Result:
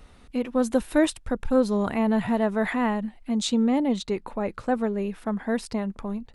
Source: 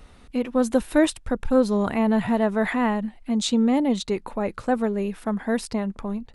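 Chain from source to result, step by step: 3.64–5.66 high shelf 6600 Hz -5.5 dB; gain -2 dB

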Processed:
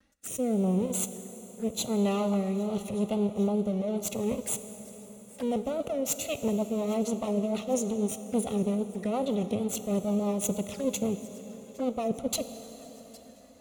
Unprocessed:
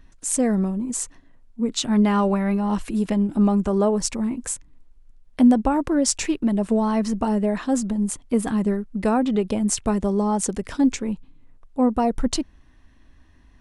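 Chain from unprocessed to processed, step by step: minimum comb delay 1.5 ms; HPF 120 Hz 12 dB/oct; high shelf 7200 Hz +8 dB; reverse; compressor 6:1, threshold -29 dBFS, peak gain reduction 14 dB; reverse; sample leveller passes 1; on a send: thin delay 0.807 s, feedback 63%, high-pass 2000 Hz, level -21.5 dB; on the sum: envelope flanger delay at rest 3.9 ms, full sweep at -29 dBFS; rotary speaker horn 0.85 Hz, later 6.3 Hz, at 5.37; vibrato 2.3 Hz 72 cents; plate-style reverb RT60 5 s, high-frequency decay 0.75×, DRR 10 dB; gain +1.5 dB

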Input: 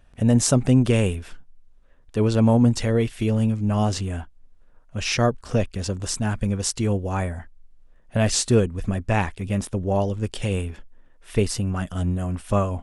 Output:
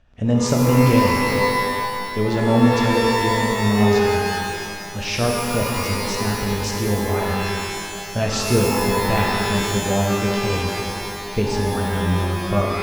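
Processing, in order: LPF 6400 Hz 24 dB/oct; shimmer reverb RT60 2.2 s, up +12 st, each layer -2 dB, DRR 0 dB; gain -2 dB

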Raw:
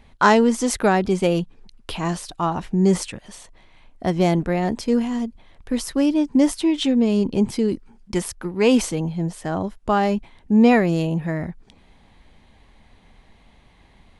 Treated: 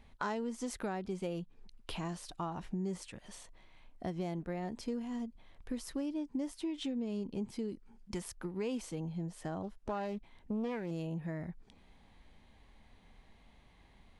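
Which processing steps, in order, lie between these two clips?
harmonic-percussive split percussive -4 dB; compressor 4:1, threshold -29 dBFS, peak gain reduction 16 dB; 9.62–10.91 Doppler distortion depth 0.48 ms; gain -7.5 dB

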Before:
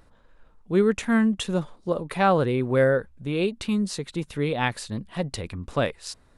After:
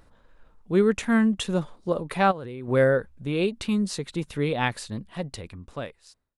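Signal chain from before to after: ending faded out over 1.81 s; 2.27–2.68 level quantiser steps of 18 dB

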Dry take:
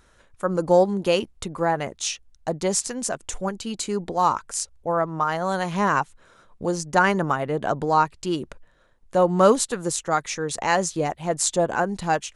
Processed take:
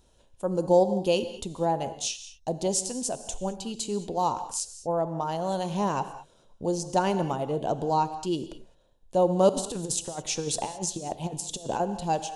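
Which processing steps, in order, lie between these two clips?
band shelf 1600 Hz -14 dB 1.2 oct; 9.49–11.8 negative-ratio compressor -28 dBFS, ratio -0.5; non-linear reverb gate 0.24 s flat, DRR 10.5 dB; gain -3.5 dB

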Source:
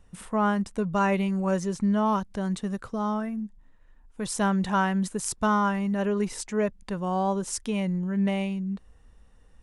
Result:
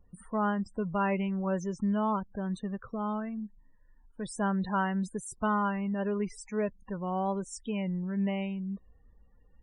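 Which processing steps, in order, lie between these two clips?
loudest bins only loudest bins 32; gain -5 dB

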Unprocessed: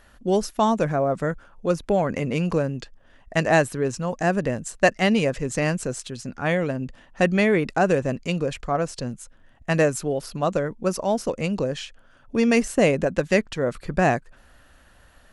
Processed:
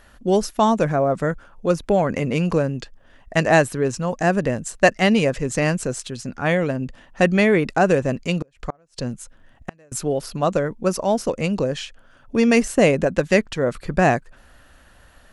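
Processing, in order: 8.34–9.92 flipped gate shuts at -16 dBFS, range -36 dB; gain +3 dB

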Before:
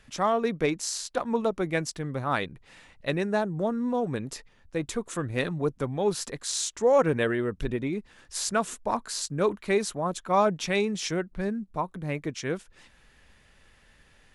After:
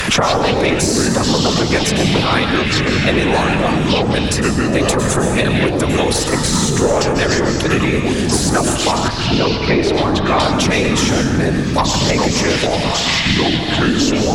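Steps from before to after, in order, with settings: low shelf 230 Hz -7.5 dB; in parallel at -1 dB: negative-ratio compressor -35 dBFS; on the sum: whisperiser; added harmonics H 2 -10 dB, 5 -25 dB, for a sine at -7.5 dBFS; plate-style reverb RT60 0.68 s, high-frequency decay 0.95×, pre-delay 90 ms, DRR 6.5 dB; echoes that change speed 95 ms, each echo -6 st, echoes 3; 9.08–10.4 air absorption 320 m; three-band squash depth 100%; gain +6.5 dB

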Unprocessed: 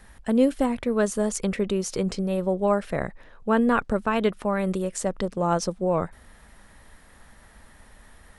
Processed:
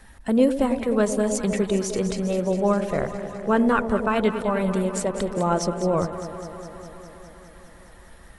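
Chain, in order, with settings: bin magnitudes rounded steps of 15 dB; echo with dull and thin repeats by turns 0.102 s, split 820 Hz, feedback 86%, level -9.5 dB; gain +1.5 dB

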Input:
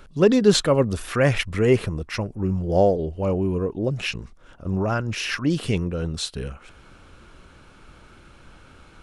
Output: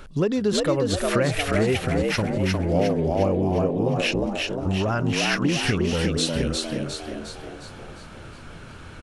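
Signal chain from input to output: compressor 5:1, threshold -25 dBFS, peak gain reduction 14 dB; on a send: frequency-shifting echo 0.356 s, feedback 51%, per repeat +73 Hz, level -3 dB; on the sum: gain +4.5 dB

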